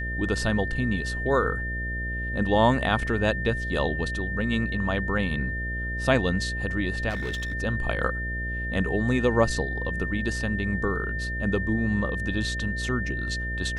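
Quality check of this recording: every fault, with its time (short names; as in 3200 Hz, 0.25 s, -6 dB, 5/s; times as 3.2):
buzz 60 Hz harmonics 11 -32 dBFS
tone 1800 Hz -31 dBFS
7.09–7.54 clipped -26 dBFS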